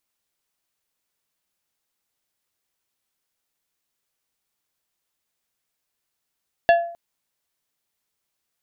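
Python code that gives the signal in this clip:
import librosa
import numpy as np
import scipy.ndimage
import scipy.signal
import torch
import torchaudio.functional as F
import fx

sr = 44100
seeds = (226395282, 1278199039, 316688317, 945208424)

y = fx.strike_glass(sr, length_s=0.26, level_db=-9.0, body='plate', hz=683.0, decay_s=0.53, tilt_db=7, modes=5)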